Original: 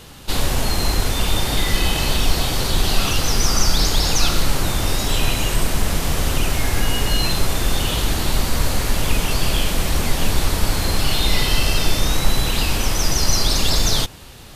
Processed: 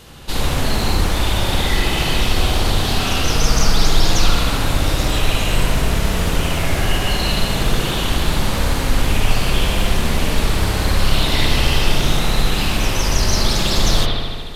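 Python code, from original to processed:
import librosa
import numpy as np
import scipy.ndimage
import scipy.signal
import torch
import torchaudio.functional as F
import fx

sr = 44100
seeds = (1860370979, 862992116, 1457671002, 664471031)

y = fx.rev_spring(x, sr, rt60_s=1.8, pass_ms=(58,), chirp_ms=20, drr_db=-2.5)
y = fx.doppler_dist(y, sr, depth_ms=0.28)
y = y * 10.0 ** (-1.5 / 20.0)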